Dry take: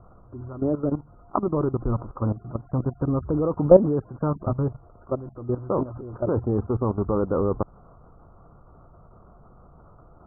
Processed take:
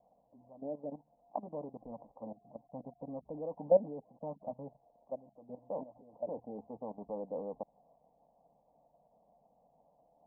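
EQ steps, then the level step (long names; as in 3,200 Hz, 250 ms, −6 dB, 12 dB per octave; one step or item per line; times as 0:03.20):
Butterworth low-pass 870 Hz 48 dB per octave
first difference
phaser with its sweep stopped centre 370 Hz, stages 6
+11.5 dB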